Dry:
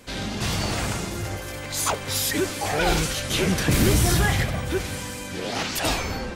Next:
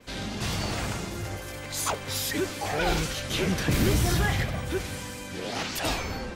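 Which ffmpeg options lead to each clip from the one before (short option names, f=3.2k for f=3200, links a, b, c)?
-af "adynamicequalizer=threshold=0.00794:dfrequency=9700:dqfactor=1:tfrequency=9700:tqfactor=1:attack=5:release=100:ratio=0.375:range=2.5:mode=cutabove:tftype=bell,volume=-4dB"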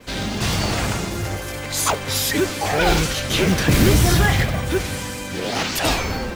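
-af "acrusher=bits=6:mode=log:mix=0:aa=0.000001,volume=8.5dB"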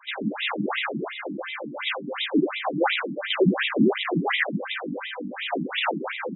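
-af "asoftclip=type=hard:threshold=-14dB,afftfilt=real='re*between(b*sr/1024,230*pow(2800/230,0.5+0.5*sin(2*PI*2.8*pts/sr))/1.41,230*pow(2800/230,0.5+0.5*sin(2*PI*2.8*pts/sr))*1.41)':imag='im*between(b*sr/1024,230*pow(2800/230,0.5+0.5*sin(2*PI*2.8*pts/sr))/1.41,230*pow(2800/230,0.5+0.5*sin(2*PI*2.8*pts/sr))*1.41)':win_size=1024:overlap=0.75,volume=4dB"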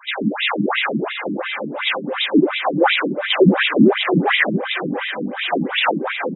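-af "aecho=1:1:680|1360:0.211|0.0444,volume=7.5dB"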